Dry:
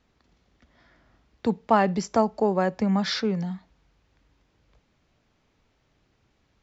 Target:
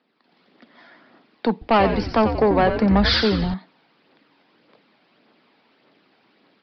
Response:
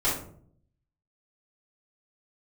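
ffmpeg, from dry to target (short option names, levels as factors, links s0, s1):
-filter_complex "[0:a]highpass=f=220:w=0.5412,highpass=f=220:w=1.3066,dynaudnorm=f=200:g=3:m=3.55,aphaser=in_gain=1:out_gain=1:delay=1.4:decay=0.32:speed=1.7:type=triangular,asoftclip=type=tanh:threshold=0.266,asettb=1/sr,asplit=3[s0][s1][s2];[s0]atrim=end=1.524[s3];[s1]atrim=start=1.52:end=3.54,asetpts=PTS-STARTPTS,afade=t=in:d=0.004:c=qsin,afade=t=out:st=2.016:d=0.004:c=qsin,asplit=6[s4][s5][s6][s7][s8][s9];[s5]adelay=90,afreqshift=-140,volume=0.422[s10];[s6]adelay=180,afreqshift=-280,volume=0.197[s11];[s7]adelay=270,afreqshift=-420,volume=0.0933[s12];[s8]adelay=360,afreqshift=-560,volume=0.0437[s13];[s9]adelay=450,afreqshift=-700,volume=0.0207[s14];[s4][s10][s11][s12][s13][s14]amix=inputs=6:normalize=0,atrim=end_sample=89082[s15];[s2]atrim=start=3.536[s16];[s3][s15]acrossfade=d=0.004:c1=hsin:c2=qsin[s17];[s17][s16]acrossfade=d=0.004:c1=qsin:c2=hsin,aresample=11025,aresample=44100"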